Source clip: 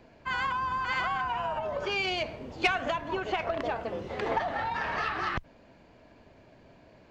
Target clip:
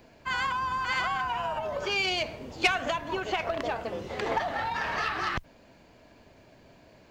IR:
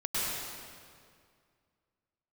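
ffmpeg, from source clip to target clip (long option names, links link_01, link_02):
-af "crystalizer=i=2:c=0"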